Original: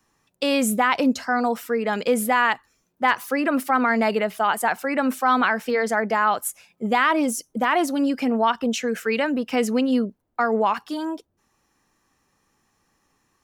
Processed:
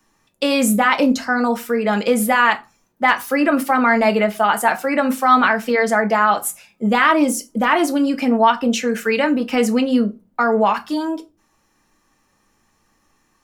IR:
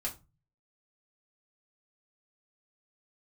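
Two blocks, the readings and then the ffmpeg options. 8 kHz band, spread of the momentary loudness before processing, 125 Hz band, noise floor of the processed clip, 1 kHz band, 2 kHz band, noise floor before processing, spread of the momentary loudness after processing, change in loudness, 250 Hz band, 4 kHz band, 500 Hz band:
+4.5 dB, 6 LU, can't be measured, −64 dBFS, +4.5 dB, +5.0 dB, −71 dBFS, 7 LU, +5.0 dB, +5.0 dB, +4.5 dB, +4.5 dB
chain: -filter_complex "[0:a]asplit=2[link_01][link_02];[1:a]atrim=start_sample=2205[link_03];[link_02][link_03]afir=irnorm=-1:irlink=0,volume=-2dB[link_04];[link_01][link_04]amix=inputs=2:normalize=0"

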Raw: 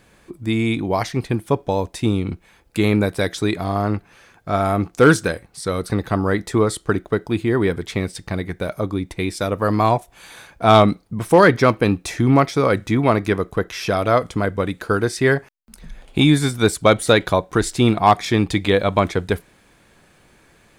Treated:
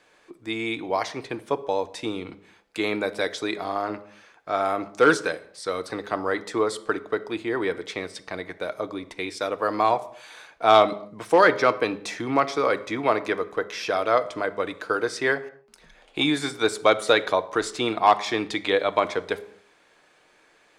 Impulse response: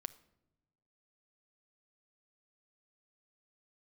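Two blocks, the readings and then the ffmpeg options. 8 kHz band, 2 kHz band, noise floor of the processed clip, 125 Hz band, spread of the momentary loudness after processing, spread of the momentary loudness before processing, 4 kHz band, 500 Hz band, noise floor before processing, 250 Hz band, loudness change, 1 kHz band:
−7.5 dB, −3.0 dB, −60 dBFS, −20.5 dB, 14 LU, 11 LU, −3.0 dB, −4.5 dB, −55 dBFS, −10.5 dB, −5.5 dB, −3.0 dB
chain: -filter_complex "[0:a]acrossover=split=330 7700:gain=0.1 1 0.2[link_01][link_02][link_03];[link_01][link_02][link_03]amix=inputs=3:normalize=0,bandreject=frequency=203.7:width_type=h:width=4,bandreject=frequency=407.4:width_type=h:width=4,bandreject=frequency=611.1:width_type=h:width=4,bandreject=frequency=814.8:width_type=h:width=4,bandreject=frequency=1018.5:width_type=h:width=4[link_04];[1:a]atrim=start_sample=2205,afade=type=out:start_time=0.31:duration=0.01,atrim=end_sample=14112,asetrate=41895,aresample=44100[link_05];[link_04][link_05]afir=irnorm=-1:irlink=0"

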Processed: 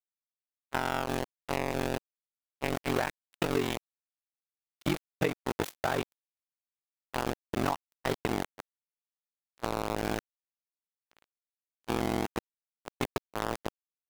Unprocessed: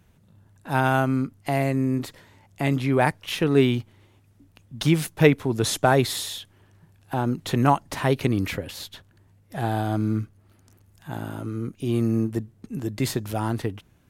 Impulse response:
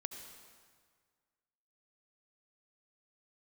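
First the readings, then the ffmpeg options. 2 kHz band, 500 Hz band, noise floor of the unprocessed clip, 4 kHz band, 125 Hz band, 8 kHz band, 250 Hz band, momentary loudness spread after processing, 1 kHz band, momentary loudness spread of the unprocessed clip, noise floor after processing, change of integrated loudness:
−7.5 dB, −9.0 dB, −59 dBFS, −8.5 dB, −15.5 dB, −10.0 dB, −11.5 dB, 8 LU, −8.0 dB, 13 LU, below −85 dBFS, −9.5 dB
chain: -af "highshelf=frequency=11000:gain=-5,aeval=exprs='val(0)*gte(abs(val(0)),0.112)':channel_layout=same,bass=frequency=250:gain=-5,treble=frequency=4000:gain=-2,acompressor=threshold=-23dB:ratio=16,aeval=exprs='val(0)*sin(2*PI*23*n/s)':channel_layout=same,agate=range=-25dB:threshold=-36dB:ratio=16:detection=peak,volume=1.5dB"

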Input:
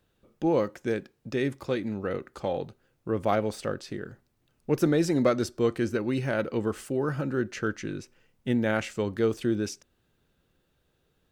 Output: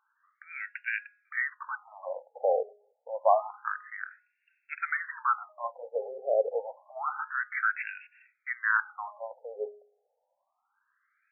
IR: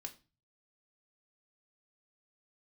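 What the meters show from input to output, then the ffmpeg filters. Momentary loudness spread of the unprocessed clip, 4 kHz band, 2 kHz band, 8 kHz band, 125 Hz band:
12 LU, below −25 dB, +6.0 dB, below −35 dB, below −40 dB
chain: -af "bandreject=frequency=207.6:width_type=h:width=4,bandreject=frequency=415.2:width_type=h:width=4,bandreject=frequency=622.8:width_type=h:width=4,bandreject=frequency=830.4:width_type=h:width=4,bandreject=frequency=1038:width_type=h:width=4,bandreject=frequency=1245.6:width_type=h:width=4,bandreject=frequency=1453.2:width_type=h:width=4,bandreject=frequency=1660.8:width_type=h:width=4,crystalizer=i=5.5:c=0,afftfilt=real='re*between(b*sr/1024,570*pow(2000/570,0.5+0.5*sin(2*PI*0.28*pts/sr))/1.41,570*pow(2000/570,0.5+0.5*sin(2*PI*0.28*pts/sr))*1.41)':imag='im*between(b*sr/1024,570*pow(2000/570,0.5+0.5*sin(2*PI*0.28*pts/sr))/1.41,570*pow(2000/570,0.5+0.5*sin(2*PI*0.28*pts/sr))*1.41)':win_size=1024:overlap=0.75,volume=4dB"

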